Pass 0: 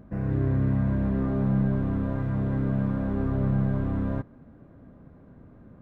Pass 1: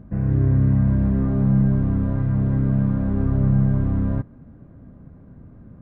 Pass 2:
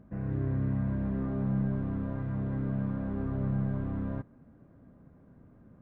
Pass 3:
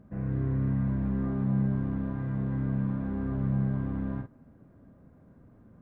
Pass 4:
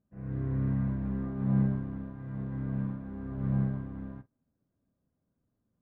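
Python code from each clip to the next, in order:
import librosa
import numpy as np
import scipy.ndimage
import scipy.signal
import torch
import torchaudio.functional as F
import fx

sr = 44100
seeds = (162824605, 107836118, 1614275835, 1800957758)

y1 = fx.bass_treble(x, sr, bass_db=8, treble_db=-8)
y2 = fx.low_shelf(y1, sr, hz=180.0, db=-10.0)
y2 = y2 * librosa.db_to_amplitude(-6.5)
y3 = fx.doubler(y2, sr, ms=46.0, db=-6.0)
y4 = fx.upward_expand(y3, sr, threshold_db=-42.0, expansion=2.5)
y4 = y4 * librosa.db_to_amplitude(1.5)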